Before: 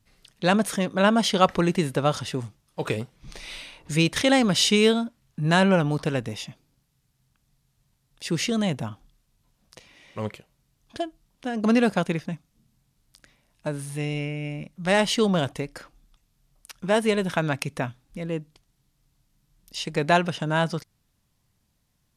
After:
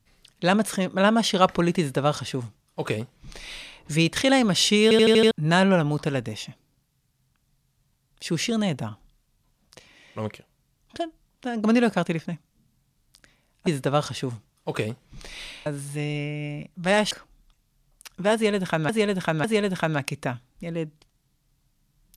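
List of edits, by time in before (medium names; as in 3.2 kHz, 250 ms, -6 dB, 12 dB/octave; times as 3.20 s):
1.78–3.77 s: copy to 13.67 s
4.83 s: stutter in place 0.08 s, 6 plays
15.12–15.75 s: delete
16.98–17.53 s: loop, 3 plays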